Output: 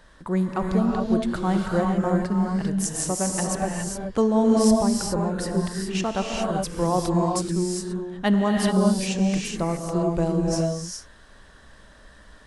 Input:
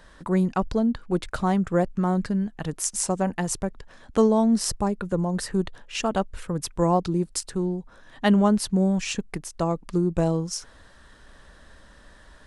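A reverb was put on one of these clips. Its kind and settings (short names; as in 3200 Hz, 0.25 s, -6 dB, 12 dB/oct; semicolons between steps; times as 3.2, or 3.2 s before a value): non-linear reverb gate 0.44 s rising, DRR -0.5 dB; gain -2 dB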